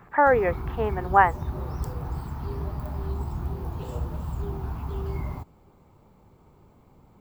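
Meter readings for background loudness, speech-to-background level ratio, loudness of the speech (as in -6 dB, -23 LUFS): -33.5 LUFS, 11.0 dB, -22.5 LUFS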